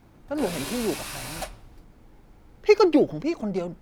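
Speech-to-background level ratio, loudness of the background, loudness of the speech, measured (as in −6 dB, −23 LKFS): 10.5 dB, −34.5 LKFS, −24.0 LKFS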